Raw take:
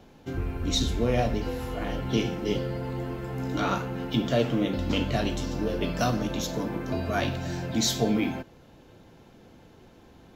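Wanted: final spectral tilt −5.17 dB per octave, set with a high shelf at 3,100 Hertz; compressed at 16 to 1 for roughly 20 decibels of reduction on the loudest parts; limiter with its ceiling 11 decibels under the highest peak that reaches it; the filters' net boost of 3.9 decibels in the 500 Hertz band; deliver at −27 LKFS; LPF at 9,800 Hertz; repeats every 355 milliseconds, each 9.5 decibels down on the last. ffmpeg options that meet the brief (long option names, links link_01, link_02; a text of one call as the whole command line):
ffmpeg -i in.wav -af "lowpass=9800,equalizer=frequency=500:width_type=o:gain=4.5,highshelf=frequency=3100:gain=6.5,acompressor=threshold=-37dB:ratio=16,alimiter=level_in=9dB:limit=-24dB:level=0:latency=1,volume=-9dB,aecho=1:1:355|710|1065|1420:0.335|0.111|0.0365|0.012,volume=16dB" out.wav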